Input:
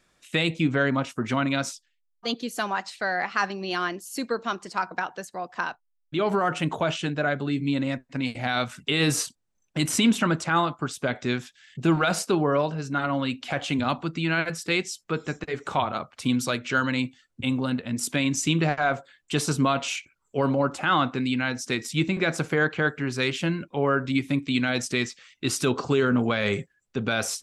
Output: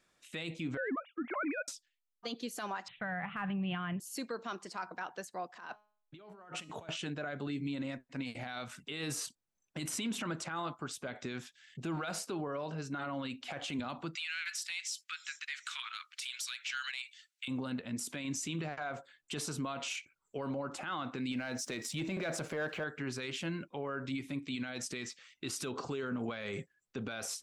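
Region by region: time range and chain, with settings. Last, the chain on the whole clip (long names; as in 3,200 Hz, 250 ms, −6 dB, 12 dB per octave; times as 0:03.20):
0:00.77–0:01.68: three sine waves on the formant tracks + transient designer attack −3 dB, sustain −9 dB
0:02.88–0:04.00: Butterworth low-pass 3,500 Hz 96 dB per octave + de-essing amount 95% + low shelf with overshoot 220 Hz +14 dB, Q 3
0:05.51–0:06.89: compressor whose output falls as the input rises −36 dBFS + tuned comb filter 210 Hz, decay 0.56 s, mix 50% + multiband upward and downward expander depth 40%
0:14.15–0:17.48: Bessel high-pass filter 2,700 Hz, order 8 + downward compressor 4 to 1, threshold −37 dBFS + mid-hump overdrive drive 18 dB, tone 5,300 Hz, clips at −13 dBFS
0:21.31–0:22.84: parametric band 610 Hz +9.5 dB 0.33 octaves + leveller curve on the samples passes 1
whole clip: low-shelf EQ 130 Hz −7 dB; brickwall limiter −22.5 dBFS; level −6.5 dB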